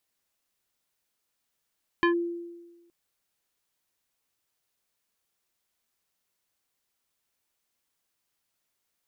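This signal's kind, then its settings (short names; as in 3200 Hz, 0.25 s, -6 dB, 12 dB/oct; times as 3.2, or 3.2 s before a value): FM tone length 0.87 s, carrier 343 Hz, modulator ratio 4.02, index 1.3, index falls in 0.11 s linear, decay 1.24 s, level -17.5 dB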